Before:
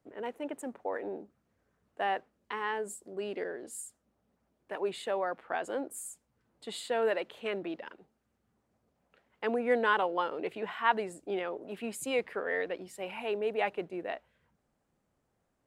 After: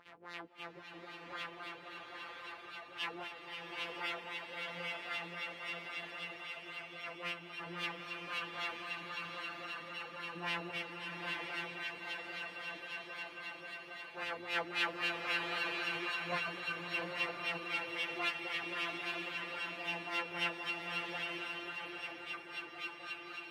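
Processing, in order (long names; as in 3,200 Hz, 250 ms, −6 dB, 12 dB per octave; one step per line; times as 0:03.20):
samples sorted by size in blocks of 256 samples
parametric band 6,900 Hz −8 dB 1.3 octaves
echo that builds up and dies away 160 ms, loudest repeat 5, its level −9 dB
pitch vibrato 5.8 Hz 5.7 cents
first difference
auto-filter low-pass sine 5.6 Hz 290–3,100 Hz
time stretch by phase vocoder 1.5×
upward compression, threshold −59 dBFS
slow-attack reverb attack 940 ms, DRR 3 dB
level +10.5 dB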